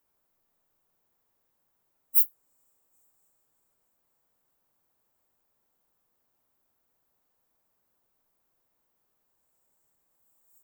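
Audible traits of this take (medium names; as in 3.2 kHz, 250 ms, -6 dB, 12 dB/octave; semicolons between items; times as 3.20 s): noise floor -76 dBFS; spectral tilt +3.5 dB/octave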